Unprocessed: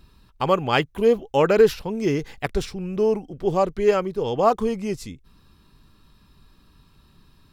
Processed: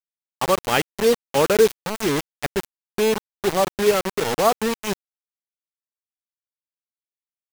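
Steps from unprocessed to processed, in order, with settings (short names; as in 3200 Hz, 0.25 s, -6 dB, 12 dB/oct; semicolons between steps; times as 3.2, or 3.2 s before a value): HPF 130 Hz 6 dB/oct; 2.17–4.44 dynamic EQ 250 Hz, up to +5 dB, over -37 dBFS, Q 2.8; bit-crush 4-bit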